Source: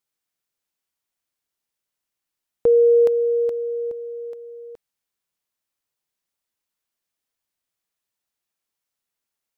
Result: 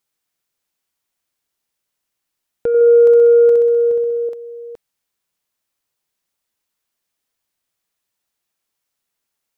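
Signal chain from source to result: in parallel at +3 dB: compressor with a negative ratio -20 dBFS, ratio -1; on the sum: saturation -7 dBFS, distortion -22 dB; 2.68–4.29 s: flutter echo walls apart 10.9 m, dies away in 1.1 s; trim -3.5 dB

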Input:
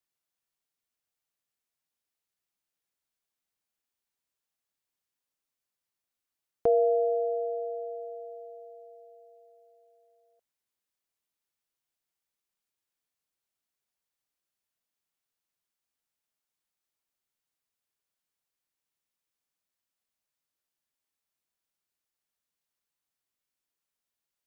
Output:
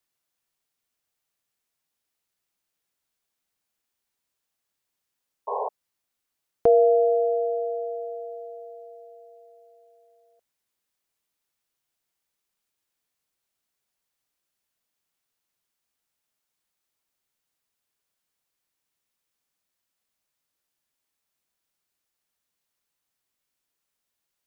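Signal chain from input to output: painted sound noise, 5.47–5.69 s, 400–1100 Hz -34 dBFS; trim +6 dB

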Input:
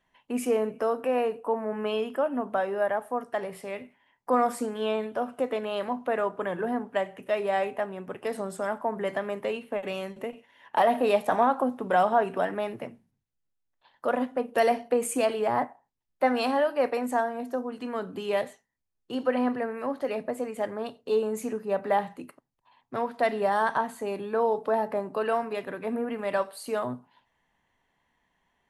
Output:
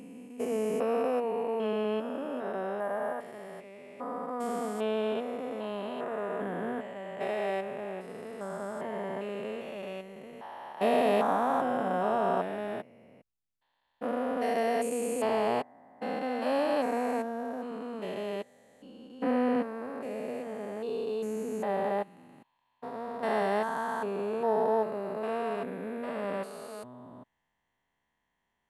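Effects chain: spectrogram pixelated in time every 400 ms; peaking EQ 7.1 kHz +2 dB 0.31 oct; upward expansion 1.5:1, over -44 dBFS; trim +3 dB

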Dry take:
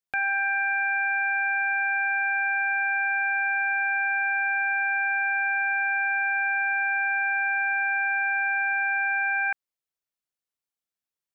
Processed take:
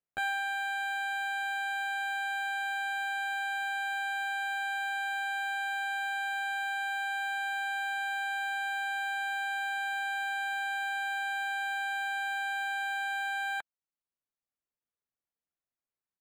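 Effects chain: reverb removal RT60 0.75 s; tempo 0.7×; treble shelf 2.2 kHz -10.5 dB; decimation joined by straight lines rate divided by 8×

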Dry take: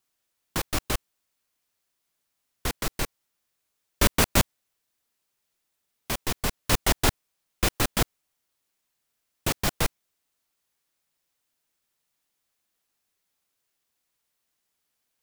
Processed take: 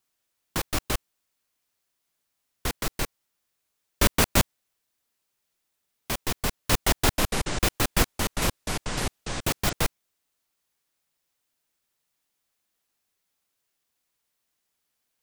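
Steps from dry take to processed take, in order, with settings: 7.04–9.73 s: ever faster or slower copies 140 ms, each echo -5 st, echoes 3

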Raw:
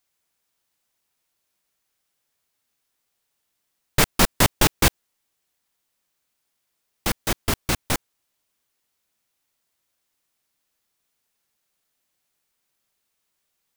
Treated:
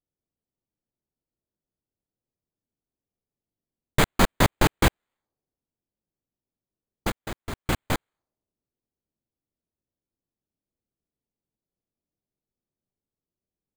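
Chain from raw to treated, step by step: level-controlled noise filter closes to 350 Hz, open at -23 dBFS; 7.10–7.66 s: level held to a coarse grid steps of 15 dB; careless resampling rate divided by 8×, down filtered, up hold

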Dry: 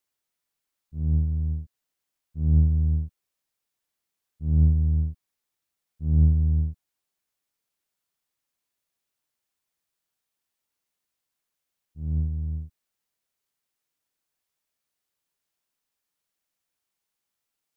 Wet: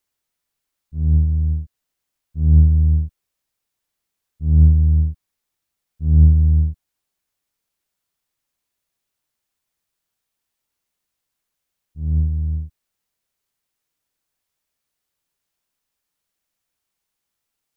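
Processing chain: bass shelf 100 Hz +7 dB; trim +3.5 dB

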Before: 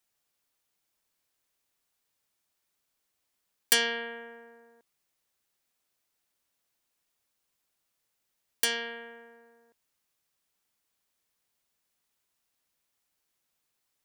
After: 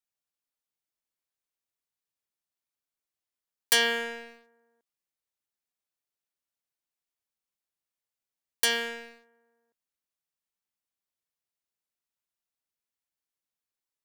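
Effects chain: waveshaping leveller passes 3; trim -7 dB

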